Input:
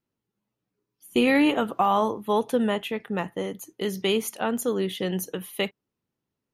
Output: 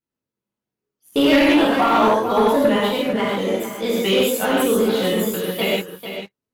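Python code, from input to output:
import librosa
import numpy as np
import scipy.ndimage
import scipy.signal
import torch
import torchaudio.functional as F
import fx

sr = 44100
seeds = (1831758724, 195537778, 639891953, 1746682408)

y = fx.pitch_trill(x, sr, semitones=2.5, every_ms=165)
y = fx.rev_gated(y, sr, seeds[0], gate_ms=180, shape='flat', drr_db=-7.0)
y = fx.leveller(y, sr, passes=2)
y = y + 10.0 ** (-9.5 / 20.0) * np.pad(y, (int(445 * sr / 1000.0), 0))[:len(y)]
y = y * 10.0 ** (-6.0 / 20.0)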